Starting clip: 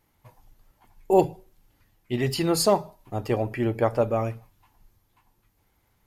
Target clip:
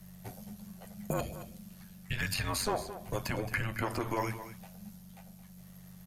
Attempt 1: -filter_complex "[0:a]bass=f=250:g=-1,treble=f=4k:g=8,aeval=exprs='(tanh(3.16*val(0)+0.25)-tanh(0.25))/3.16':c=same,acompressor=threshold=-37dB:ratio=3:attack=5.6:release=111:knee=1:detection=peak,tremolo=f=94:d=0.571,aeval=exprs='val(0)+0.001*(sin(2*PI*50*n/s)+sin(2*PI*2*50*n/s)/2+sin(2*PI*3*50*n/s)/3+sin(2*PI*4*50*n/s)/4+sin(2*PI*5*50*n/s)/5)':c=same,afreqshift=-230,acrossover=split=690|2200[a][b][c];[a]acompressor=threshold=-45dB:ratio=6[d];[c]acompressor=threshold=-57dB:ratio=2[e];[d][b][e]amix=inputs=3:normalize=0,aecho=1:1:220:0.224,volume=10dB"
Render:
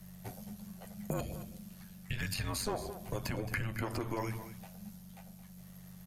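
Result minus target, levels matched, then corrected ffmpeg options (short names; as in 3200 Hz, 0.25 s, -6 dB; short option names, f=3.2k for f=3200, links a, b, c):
compressor: peak gain reduction +6.5 dB
-filter_complex "[0:a]bass=f=250:g=-1,treble=f=4k:g=8,aeval=exprs='(tanh(3.16*val(0)+0.25)-tanh(0.25))/3.16':c=same,acompressor=threshold=-27.5dB:ratio=3:attack=5.6:release=111:knee=1:detection=peak,tremolo=f=94:d=0.571,aeval=exprs='val(0)+0.001*(sin(2*PI*50*n/s)+sin(2*PI*2*50*n/s)/2+sin(2*PI*3*50*n/s)/3+sin(2*PI*4*50*n/s)/4+sin(2*PI*5*50*n/s)/5)':c=same,afreqshift=-230,acrossover=split=690|2200[a][b][c];[a]acompressor=threshold=-45dB:ratio=6[d];[c]acompressor=threshold=-57dB:ratio=2[e];[d][b][e]amix=inputs=3:normalize=0,aecho=1:1:220:0.224,volume=10dB"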